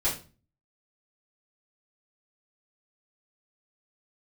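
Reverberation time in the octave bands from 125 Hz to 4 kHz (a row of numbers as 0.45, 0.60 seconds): 0.60, 0.50, 0.40, 0.30, 0.30, 0.30 seconds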